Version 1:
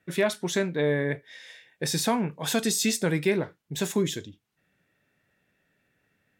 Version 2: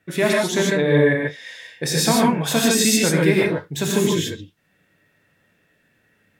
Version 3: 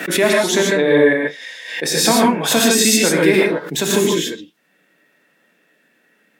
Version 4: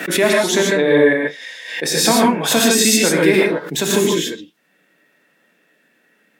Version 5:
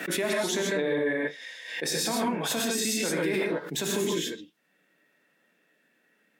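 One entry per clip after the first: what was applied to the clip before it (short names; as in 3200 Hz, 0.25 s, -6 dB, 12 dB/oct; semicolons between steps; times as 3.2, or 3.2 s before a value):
non-linear reverb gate 0.17 s rising, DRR -3 dB; gain +4 dB
HPF 210 Hz 24 dB/oct; backwards sustainer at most 70 dB/s; gain +4 dB
nothing audible
limiter -10 dBFS, peak gain reduction 8.5 dB; gain -9 dB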